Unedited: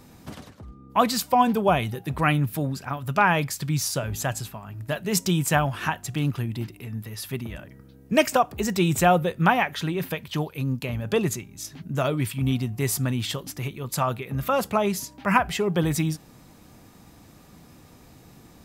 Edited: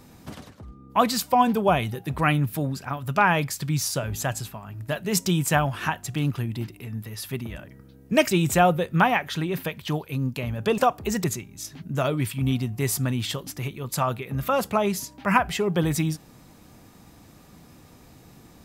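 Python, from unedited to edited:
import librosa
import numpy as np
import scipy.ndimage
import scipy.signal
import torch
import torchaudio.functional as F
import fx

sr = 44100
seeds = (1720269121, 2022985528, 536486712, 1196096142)

y = fx.edit(x, sr, fx.move(start_s=8.31, length_s=0.46, to_s=11.24), tone=tone)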